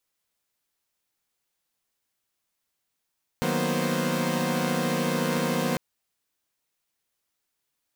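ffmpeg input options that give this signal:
-f lavfi -i "aevalsrc='0.0398*((2*mod(155.56*t,1)-1)+(2*mod(185*t,1)-1)+(2*mod(233.08*t,1)-1)+(2*mod(246.94*t,1)-1)+(2*mod(523.25*t,1)-1))':d=2.35:s=44100"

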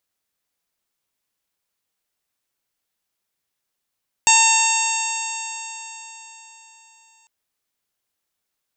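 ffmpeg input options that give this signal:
-f lavfi -i "aevalsrc='0.15*pow(10,-3*t/4.06)*sin(2*PI*897.9*t)+0.0422*pow(10,-3*t/4.06)*sin(2*PI*1801.16*t)+0.15*pow(10,-3*t/4.06)*sin(2*PI*2715.11*t)+0.0596*pow(10,-3*t/4.06)*sin(2*PI*3644.96*t)+0.0596*pow(10,-3*t/4.06)*sin(2*PI*4595.76*t)+0.0501*pow(10,-3*t/4.06)*sin(2*PI*5572.38*t)+0.141*pow(10,-3*t/4.06)*sin(2*PI*6579.48*t)+0.188*pow(10,-3*t/4.06)*sin(2*PI*7621.44*t)+0.0299*pow(10,-3*t/4.06)*sin(2*PI*8702.38*t)':d=3:s=44100"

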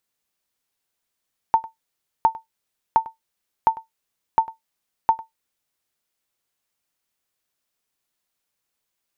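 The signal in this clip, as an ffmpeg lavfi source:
-f lavfi -i "aevalsrc='0.473*(sin(2*PI*899*mod(t,0.71))*exp(-6.91*mod(t,0.71)/0.14)+0.1*sin(2*PI*899*max(mod(t,0.71)-0.1,0))*exp(-6.91*max(mod(t,0.71)-0.1,0)/0.14))':d=4.26:s=44100"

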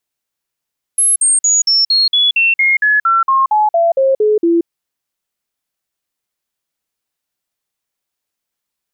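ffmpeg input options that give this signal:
-f lavfi -i "aevalsrc='0.376*clip(min(mod(t,0.23),0.18-mod(t,0.23))/0.005,0,1)*sin(2*PI*10800*pow(2,-floor(t/0.23)/3)*mod(t,0.23))':d=3.68:s=44100"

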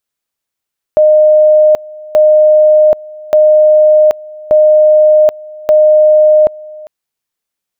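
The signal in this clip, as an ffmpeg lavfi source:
-f lavfi -i "aevalsrc='pow(10,(-3-23*gte(mod(t,1.18),0.78))/20)*sin(2*PI*613*t)':d=5.9:s=44100"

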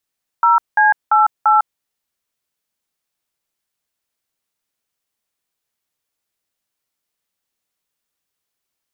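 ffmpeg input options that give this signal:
-f lavfi -i "aevalsrc='0.266*clip(min(mod(t,0.342),0.152-mod(t,0.342))/0.002,0,1)*(eq(floor(t/0.342),0)*(sin(2*PI*941*mod(t,0.342))+sin(2*PI*1336*mod(t,0.342)))+eq(floor(t/0.342),1)*(sin(2*PI*852*mod(t,0.342))+sin(2*PI*1633*mod(t,0.342)))+eq(floor(t/0.342),2)*(sin(2*PI*852*mod(t,0.342))+sin(2*PI*1336*mod(t,0.342)))+eq(floor(t/0.342),3)*(sin(2*PI*852*mod(t,0.342))+sin(2*PI*1336*mod(t,0.342))))':d=1.368:s=44100"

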